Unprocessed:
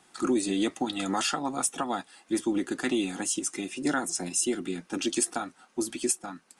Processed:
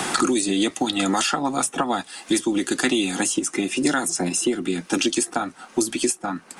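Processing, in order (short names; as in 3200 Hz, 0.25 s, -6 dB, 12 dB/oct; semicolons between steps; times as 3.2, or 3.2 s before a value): three-band squash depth 100%; gain +6 dB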